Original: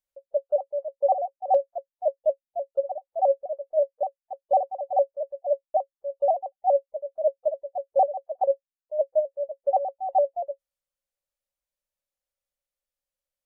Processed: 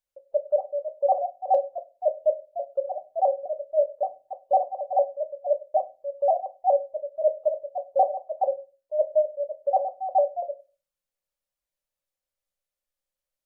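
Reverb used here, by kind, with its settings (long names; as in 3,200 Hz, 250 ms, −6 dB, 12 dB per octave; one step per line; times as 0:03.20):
rectangular room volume 130 cubic metres, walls furnished, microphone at 0.51 metres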